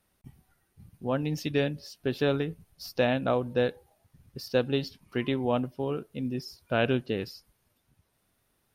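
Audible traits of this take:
background noise floor −74 dBFS
spectral slope −5.0 dB per octave

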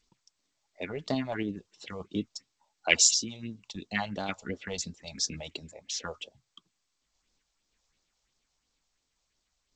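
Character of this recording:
sample-and-hold tremolo
phaser sweep stages 4, 2.9 Hz, lowest notch 260–2,500 Hz
G.722

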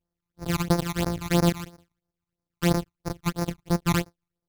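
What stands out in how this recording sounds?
a buzz of ramps at a fixed pitch in blocks of 256 samples
phaser sweep stages 12, 3 Hz, lowest notch 500–3,100 Hz

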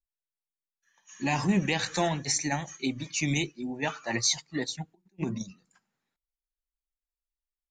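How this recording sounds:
background noise floor −94 dBFS
spectral slope −3.5 dB per octave

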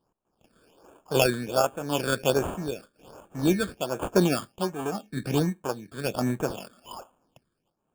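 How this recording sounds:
aliases and images of a low sample rate 2,000 Hz, jitter 0%
tremolo triangle 1 Hz, depth 75%
phaser sweep stages 8, 1.3 Hz, lowest notch 800–4,900 Hz

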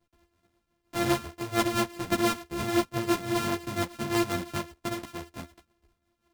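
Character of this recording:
a buzz of ramps at a fixed pitch in blocks of 128 samples
tremolo triangle 5.8 Hz, depth 65%
a shimmering, thickened sound

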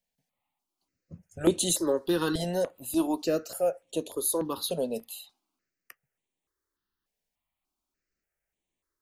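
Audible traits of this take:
notches that jump at a steady rate 3.4 Hz 330–5,000 Hz

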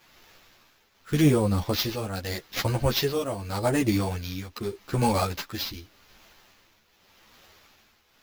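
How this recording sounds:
a quantiser's noise floor 10 bits, dither triangular
tremolo triangle 0.84 Hz, depth 75%
aliases and images of a low sample rate 9,000 Hz, jitter 0%
a shimmering, thickened sound

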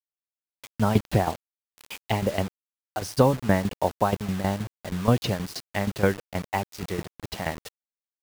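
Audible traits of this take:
tremolo saw down 6.3 Hz, depth 80%
a quantiser's noise floor 6 bits, dither none

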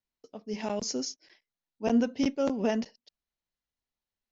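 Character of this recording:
background noise floor −93 dBFS
spectral slope −4.5 dB per octave

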